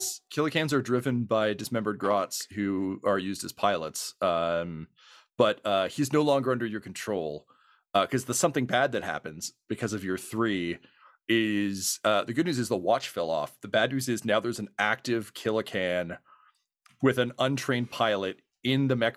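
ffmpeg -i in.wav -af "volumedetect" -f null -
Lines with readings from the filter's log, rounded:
mean_volume: -28.6 dB
max_volume: -8.5 dB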